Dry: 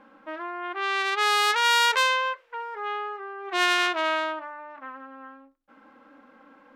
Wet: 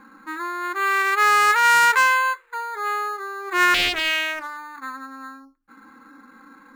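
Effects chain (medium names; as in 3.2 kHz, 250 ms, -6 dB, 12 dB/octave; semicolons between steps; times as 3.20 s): spectral gate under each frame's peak -30 dB strong; static phaser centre 1.5 kHz, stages 4; in parallel at -10.5 dB: sample-and-hold 8×; 3.74–4.57 s: on the sum: loudspeaker Doppler distortion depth 0.76 ms; trim +6.5 dB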